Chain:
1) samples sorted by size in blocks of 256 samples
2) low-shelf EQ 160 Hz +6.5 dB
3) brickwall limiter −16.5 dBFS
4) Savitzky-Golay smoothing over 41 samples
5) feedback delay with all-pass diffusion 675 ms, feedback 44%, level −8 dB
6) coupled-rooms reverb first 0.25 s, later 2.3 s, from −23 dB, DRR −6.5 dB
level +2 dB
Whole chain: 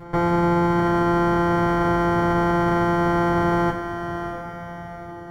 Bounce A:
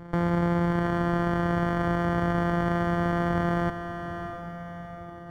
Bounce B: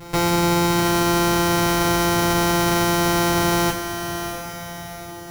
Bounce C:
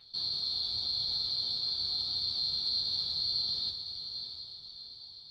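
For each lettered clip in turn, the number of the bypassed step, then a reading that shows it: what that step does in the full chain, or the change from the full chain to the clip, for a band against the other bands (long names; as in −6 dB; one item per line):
6, echo-to-direct ratio 7.5 dB to −7.0 dB
4, 4 kHz band +15.5 dB
1, change in crest factor +4.0 dB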